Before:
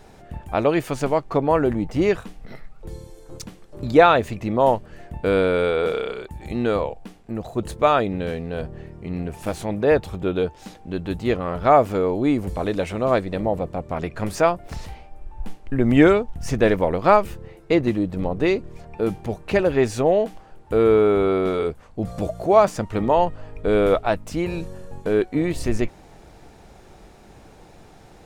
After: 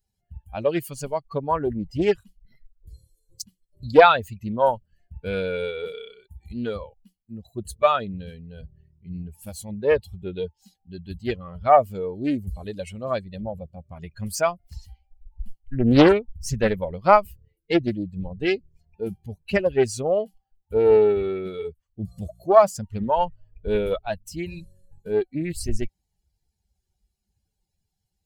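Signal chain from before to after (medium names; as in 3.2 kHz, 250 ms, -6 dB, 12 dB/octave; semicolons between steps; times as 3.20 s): expander on every frequency bin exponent 2; treble shelf 6.3 kHz +8 dB; loudspeaker Doppler distortion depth 0.65 ms; trim +3 dB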